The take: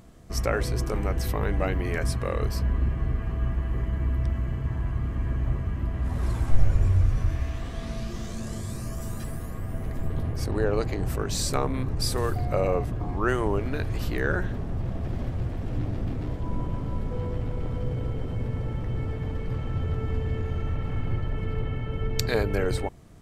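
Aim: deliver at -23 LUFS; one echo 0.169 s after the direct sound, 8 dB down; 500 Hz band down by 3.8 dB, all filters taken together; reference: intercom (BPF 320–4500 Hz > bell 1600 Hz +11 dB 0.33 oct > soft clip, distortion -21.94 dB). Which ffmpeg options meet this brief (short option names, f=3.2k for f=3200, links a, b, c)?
-af "highpass=320,lowpass=4.5k,equalizer=f=500:t=o:g=-3.5,equalizer=f=1.6k:t=o:w=0.33:g=11,aecho=1:1:169:0.398,asoftclip=threshold=-12.5dB,volume=10.5dB"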